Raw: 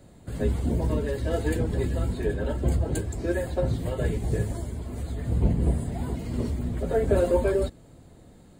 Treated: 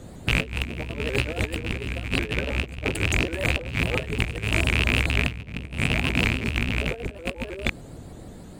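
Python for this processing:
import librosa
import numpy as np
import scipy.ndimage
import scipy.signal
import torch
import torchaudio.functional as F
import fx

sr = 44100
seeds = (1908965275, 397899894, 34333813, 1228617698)

y = fx.rattle_buzz(x, sr, strikes_db=-33.0, level_db=-17.0)
y = fx.over_compress(y, sr, threshold_db=-30.0, ratio=-0.5)
y = fx.vibrato_shape(y, sr, shape='saw_up', rate_hz=6.4, depth_cents=160.0)
y = F.gain(torch.from_numpy(y), 4.5).numpy()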